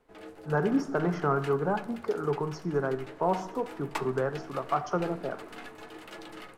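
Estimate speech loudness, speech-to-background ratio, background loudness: -30.5 LUFS, 15.0 dB, -45.5 LUFS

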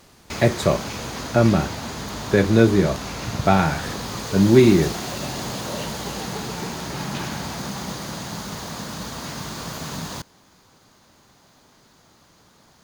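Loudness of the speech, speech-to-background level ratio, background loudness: -19.0 LUFS, 11.0 dB, -30.0 LUFS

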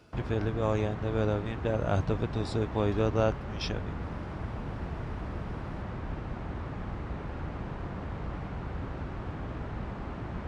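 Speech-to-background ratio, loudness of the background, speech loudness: 7.0 dB, -38.0 LUFS, -31.0 LUFS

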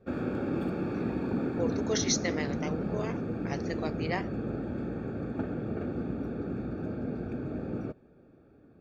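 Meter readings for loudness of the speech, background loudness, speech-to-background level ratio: -34.5 LUFS, -34.0 LUFS, -0.5 dB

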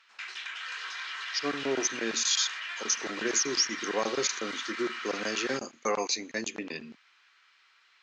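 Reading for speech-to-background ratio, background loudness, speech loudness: 6.0 dB, -36.5 LUFS, -30.5 LUFS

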